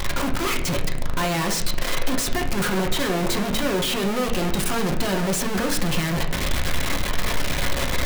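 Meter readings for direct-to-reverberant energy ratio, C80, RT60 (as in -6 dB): 1.5 dB, 12.5 dB, 0.75 s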